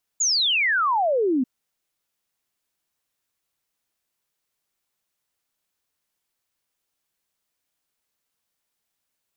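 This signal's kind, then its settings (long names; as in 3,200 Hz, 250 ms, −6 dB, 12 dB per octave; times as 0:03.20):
exponential sine sweep 7,100 Hz → 240 Hz 1.24 s −18 dBFS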